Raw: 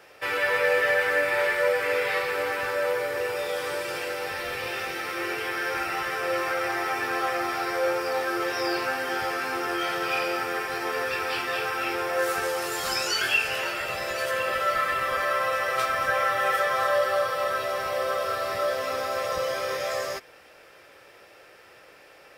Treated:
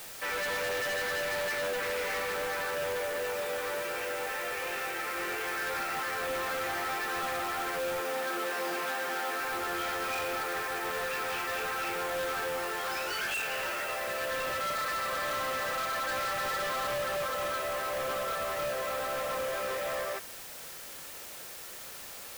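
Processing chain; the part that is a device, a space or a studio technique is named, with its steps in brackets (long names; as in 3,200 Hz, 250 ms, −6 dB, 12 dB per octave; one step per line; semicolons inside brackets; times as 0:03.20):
aircraft radio (band-pass filter 390–2,600 Hz; hard clipping −30 dBFS, distortion −7 dB; white noise bed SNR 11 dB)
0:08.01–0:09.40: high-pass filter 170 Hz 24 dB per octave
level −1 dB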